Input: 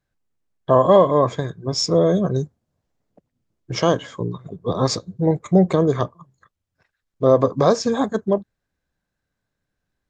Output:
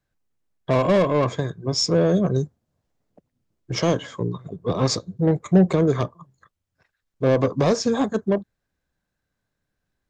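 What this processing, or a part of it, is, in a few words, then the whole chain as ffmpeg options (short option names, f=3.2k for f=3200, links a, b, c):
one-band saturation: -filter_complex "[0:a]acrossover=split=390|4300[a][b][c];[b]asoftclip=type=tanh:threshold=-20dB[d];[a][d][c]amix=inputs=3:normalize=0"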